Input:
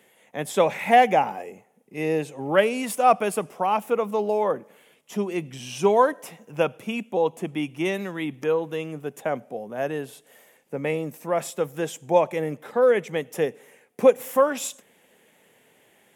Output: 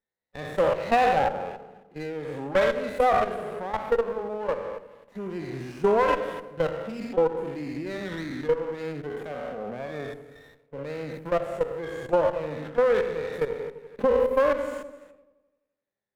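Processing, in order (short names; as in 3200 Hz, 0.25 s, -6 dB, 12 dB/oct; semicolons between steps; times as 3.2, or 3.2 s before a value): spectral trails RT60 0.87 s; dynamic EQ 540 Hz, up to +3 dB, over -32 dBFS, Q 2.7; level quantiser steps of 18 dB; gate with hold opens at -50 dBFS; harmonic-percussive split percussive -12 dB; dark delay 85 ms, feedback 61%, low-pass 490 Hz, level -9 dB; compressor, threshold -21 dBFS, peak gain reduction 6 dB; resonant high shelf 2600 Hz -11.5 dB, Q 3; running maximum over 9 samples; gain +3 dB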